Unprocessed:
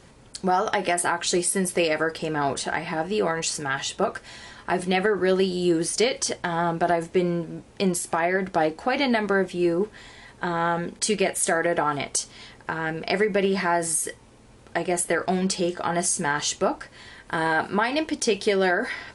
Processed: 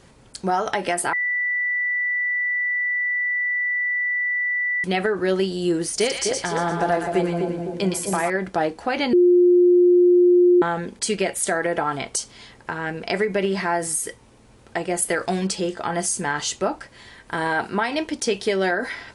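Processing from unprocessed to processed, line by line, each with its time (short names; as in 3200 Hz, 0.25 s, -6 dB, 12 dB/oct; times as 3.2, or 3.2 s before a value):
1.13–4.84 bleep 1970 Hz -20 dBFS
5.89–8.3 split-band echo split 840 Hz, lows 0.255 s, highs 0.116 s, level -4 dB
9.13–10.62 bleep 355 Hz -11 dBFS
15.02–15.47 high shelf 4600 Hz +9 dB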